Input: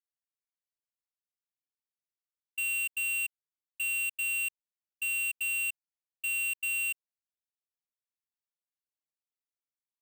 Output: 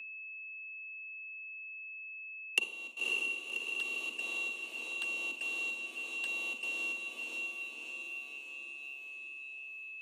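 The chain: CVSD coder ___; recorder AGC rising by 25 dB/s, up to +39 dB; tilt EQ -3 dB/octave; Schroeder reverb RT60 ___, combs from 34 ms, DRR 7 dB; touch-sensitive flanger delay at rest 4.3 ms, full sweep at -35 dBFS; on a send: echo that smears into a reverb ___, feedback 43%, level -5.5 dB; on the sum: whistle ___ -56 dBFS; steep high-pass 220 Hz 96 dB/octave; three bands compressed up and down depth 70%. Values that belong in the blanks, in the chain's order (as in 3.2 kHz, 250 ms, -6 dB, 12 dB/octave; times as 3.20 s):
64 kbps, 0.37 s, 566 ms, 2.6 kHz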